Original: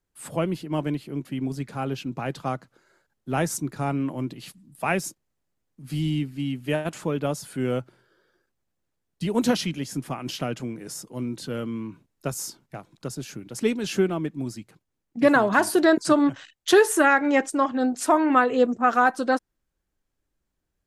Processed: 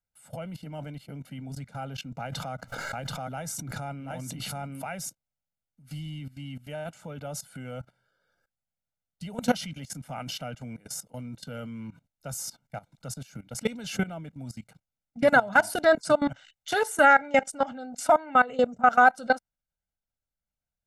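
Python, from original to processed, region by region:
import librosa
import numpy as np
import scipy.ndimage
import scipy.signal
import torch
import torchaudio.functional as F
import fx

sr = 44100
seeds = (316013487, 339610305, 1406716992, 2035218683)

y = fx.chain(x, sr, fx.echo_single(ms=731, db=-9.5),
    fx.pre_swell(db_per_s=21.0), at=(2.2, 4.89))
y = fx.low_shelf(y, sr, hz=80.0, db=-3.0)
y = fx.level_steps(y, sr, step_db=19)
y = y + 0.85 * np.pad(y, (int(1.4 * sr / 1000.0), 0))[:len(y)]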